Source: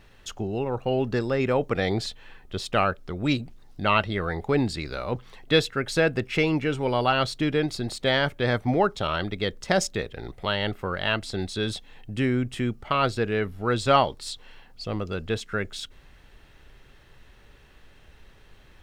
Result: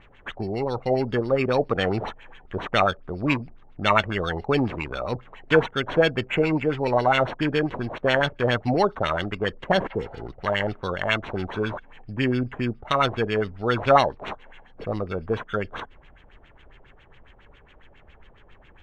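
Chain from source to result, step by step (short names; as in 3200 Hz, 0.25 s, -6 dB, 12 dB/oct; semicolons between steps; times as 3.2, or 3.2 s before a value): sample-and-hold 9×; spectral repair 9.93–10.2, 520–5200 Hz both; LFO low-pass sine 7.3 Hz 610–3400 Hz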